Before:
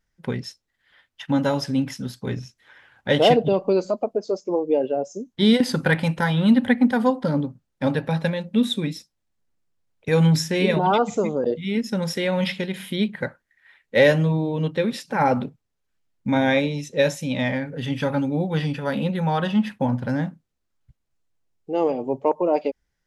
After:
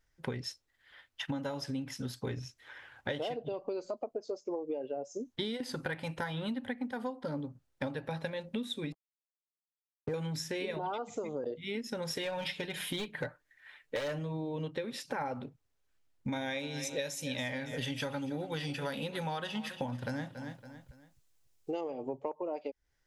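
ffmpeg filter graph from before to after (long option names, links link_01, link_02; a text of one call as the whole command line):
ffmpeg -i in.wav -filter_complex "[0:a]asettb=1/sr,asplit=3[link_01][link_02][link_03];[link_01]atrim=end=8.924[link_04];[link_02]atrim=start=8.92:end=10.14,asetpts=PTS-STARTPTS,afade=type=in:duration=0.004:curve=qsin,afade=type=out:start_time=1.216:duration=0.004:curve=qsin,lowpass=frequency=1300:width=0.5412,lowpass=frequency=1300:width=1.3066,aeval=exprs='sgn(val(0))*max(abs(val(0))-0.00794,0)':channel_layout=same[link_05];[link_03]atrim=start=10.136[link_06];[link_04][link_05]acrossfade=duration=0.004:curve1=hsin:curve2=qsin[link_07];[link_07][link_06]acrossfade=duration=0.004:curve1=qsin:curve2=hsin,asettb=1/sr,asplit=3[link_08][link_09][link_10];[link_08]atrim=end=12.104[link_11];[link_09]atrim=start=12.1:end=14.19,asetpts=PTS-STARTPTS,afade=type=in:duration=0.004:curve=qsin,afade=type=out:start_time=2.086:duration=0.004:curve=qsin,asoftclip=type=hard:threshold=-17dB,bandreject=frequency=2000:width=18,aecho=1:1:6.7:0.55,atrim=end_sample=92169[link_12];[link_10]atrim=start=14.186[link_13];[link_11][link_12]acrossfade=duration=0.004:curve1=hsin:curve2=qsin[link_14];[link_14][link_13]acrossfade=duration=0.004:curve1=qsin:curve2=hsin,asettb=1/sr,asplit=3[link_15][link_16][link_17];[link_15]atrim=end=16.324[link_18];[link_16]atrim=start=16.32:end=21.81,asetpts=PTS-STARTPTS,afade=type=in:duration=0.004:curve=qsin,afade=type=out:start_time=5.486:duration=0.004:curve=qsin,highshelf=frequency=3000:gain=12,aecho=1:1:280|560|840:0.141|0.0494|0.0173,atrim=end_sample=242109[link_19];[link_17]atrim=start=21.806[link_20];[link_18][link_19]acrossfade=duration=0.004:curve1=hsin:curve2=qsin[link_21];[link_21][link_20]acrossfade=duration=0.004:curve1=qsin:curve2=hsin,equalizer=frequency=190:width_type=o:width=0.33:gain=-14.5,acompressor=threshold=-33dB:ratio=16" out.wav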